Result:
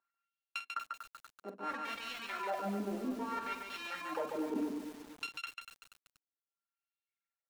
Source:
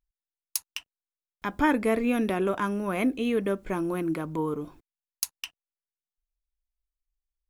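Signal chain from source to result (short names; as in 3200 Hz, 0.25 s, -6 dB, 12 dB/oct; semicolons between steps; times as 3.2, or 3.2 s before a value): sample sorter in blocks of 32 samples; reverb removal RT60 2 s; HPF 180 Hz 24 dB/oct; reverb removal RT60 0.55 s; reverse; compressor 8:1, threshold -41 dBFS, peak gain reduction 22 dB; reverse; transient shaper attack -6 dB, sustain +4 dB; LFO band-pass sine 0.61 Hz 290–3200 Hz; loudspeakers at several distances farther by 16 m -10 dB, 49 m -4 dB; on a send at -15 dB: reverb RT60 0.15 s, pre-delay 3 ms; on the sum: lo-fi delay 0.24 s, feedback 55%, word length 10-bit, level -8.5 dB; gain +13.5 dB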